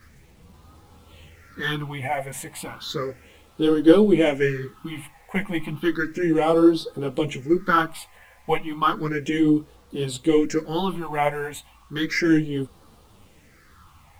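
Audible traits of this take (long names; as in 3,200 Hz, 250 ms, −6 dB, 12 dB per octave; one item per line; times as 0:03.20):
phaser sweep stages 6, 0.33 Hz, lowest notch 340–2,000 Hz
a quantiser's noise floor 10 bits, dither none
a shimmering, thickened sound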